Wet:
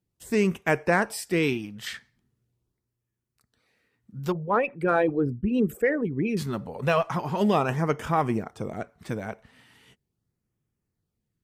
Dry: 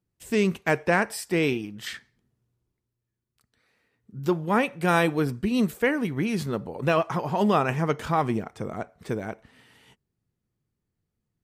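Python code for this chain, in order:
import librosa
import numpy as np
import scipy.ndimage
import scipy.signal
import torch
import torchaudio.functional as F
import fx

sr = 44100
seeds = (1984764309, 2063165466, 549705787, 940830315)

y = fx.envelope_sharpen(x, sr, power=2.0, at=(4.32, 6.37))
y = fx.cheby_harmonics(y, sr, harmonics=(6,), levels_db=(-40,), full_scale_db=-9.0)
y = fx.filter_lfo_notch(y, sr, shape='sine', hz=0.4, low_hz=310.0, high_hz=4300.0, q=2.7)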